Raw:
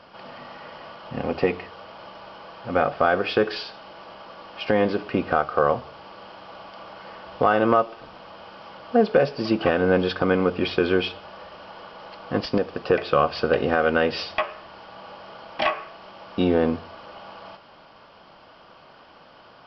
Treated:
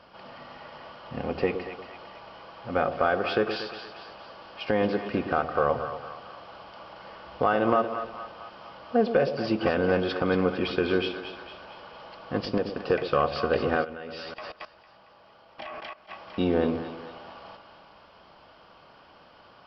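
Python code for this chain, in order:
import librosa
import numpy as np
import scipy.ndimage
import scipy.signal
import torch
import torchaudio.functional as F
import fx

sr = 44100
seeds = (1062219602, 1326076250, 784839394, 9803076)

y = fx.peak_eq(x, sr, hz=61.0, db=6.5, octaves=0.57)
y = fx.echo_split(y, sr, split_hz=710.0, low_ms=117, high_ms=227, feedback_pct=52, wet_db=-9)
y = fx.level_steps(y, sr, step_db=17, at=(13.83, 16.08), fade=0.02)
y = y * 10.0 ** (-4.5 / 20.0)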